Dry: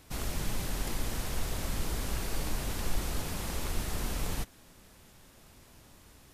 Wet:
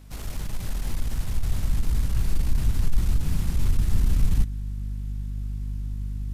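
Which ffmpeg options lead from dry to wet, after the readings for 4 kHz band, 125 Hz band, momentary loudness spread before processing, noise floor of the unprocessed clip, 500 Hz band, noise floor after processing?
−3.0 dB, +12.0 dB, 1 LU, −57 dBFS, −4.5 dB, −32 dBFS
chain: -af "aeval=exprs='val(0)+0.00631*(sin(2*PI*50*n/s)+sin(2*PI*2*50*n/s)/2+sin(2*PI*3*50*n/s)/3+sin(2*PI*4*50*n/s)/4+sin(2*PI*5*50*n/s)/5)':channel_layout=same,aeval=exprs='0.133*(cos(1*acos(clip(val(0)/0.133,-1,1)))-cos(1*PI/2))+0.0376*(cos(5*acos(clip(val(0)/0.133,-1,1)))-cos(5*PI/2))+0.00531*(cos(7*acos(clip(val(0)/0.133,-1,1)))-cos(7*PI/2))+0.00944*(cos(8*acos(clip(val(0)/0.133,-1,1)))-cos(8*PI/2))':channel_layout=same,asubboost=boost=9:cutoff=190,volume=-8dB"

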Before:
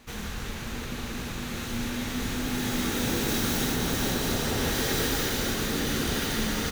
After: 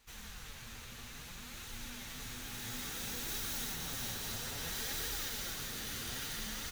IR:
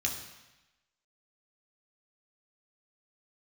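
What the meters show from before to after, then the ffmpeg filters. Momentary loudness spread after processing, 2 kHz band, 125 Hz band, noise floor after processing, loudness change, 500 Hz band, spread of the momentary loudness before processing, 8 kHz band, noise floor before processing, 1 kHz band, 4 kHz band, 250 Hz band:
11 LU, −12.5 dB, −16.5 dB, −49 dBFS, −11.5 dB, −19.5 dB, 9 LU, −8.5 dB, −36 dBFS, −14.5 dB, −10.0 dB, −21.0 dB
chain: -af "equalizer=frequency=310:width_type=o:width=1.8:gain=-9.5,flanger=delay=2:depth=8.1:regen=51:speed=0.59:shape=triangular,highshelf=frequency=3700:gain=6,volume=-9dB"

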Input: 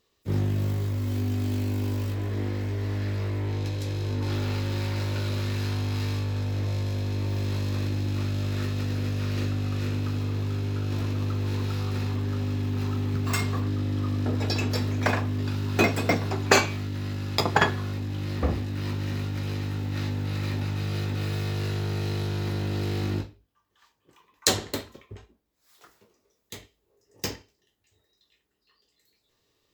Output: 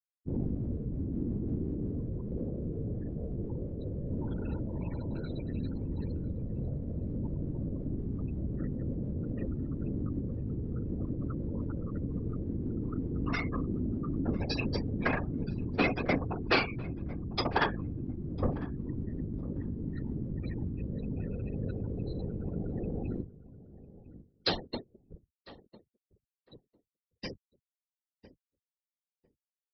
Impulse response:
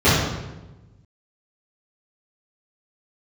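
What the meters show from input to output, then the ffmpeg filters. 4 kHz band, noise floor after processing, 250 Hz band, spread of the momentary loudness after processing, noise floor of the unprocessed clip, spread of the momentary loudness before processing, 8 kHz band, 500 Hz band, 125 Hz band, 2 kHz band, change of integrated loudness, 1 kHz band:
−8.5 dB, below −85 dBFS, −3.0 dB, 7 LU, −73 dBFS, 6 LU, below −30 dB, −6.0 dB, −9.0 dB, −7.0 dB, −7.0 dB, −7.0 dB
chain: -filter_complex "[0:a]afftfilt=real='re*gte(hypot(re,im),0.0398)':imag='im*gte(hypot(re,im),0.0398)':win_size=1024:overlap=0.75,aecho=1:1:4.3:0.43,aresample=11025,asoftclip=type=tanh:threshold=-14.5dB,aresample=44100,asplit=2[link_01][link_02];[link_02]adelay=1001,lowpass=frequency=1300:poles=1,volume=-17dB,asplit=2[link_03][link_04];[link_04]adelay=1001,lowpass=frequency=1300:poles=1,volume=0.18[link_05];[link_01][link_03][link_05]amix=inputs=3:normalize=0,afftfilt=real='hypot(re,im)*cos(2*PI*random(0))':imag='hypot(re,im)*sin(2*PI*random(1))':win_size=512:overlap=0.75,volume=1.5dB"

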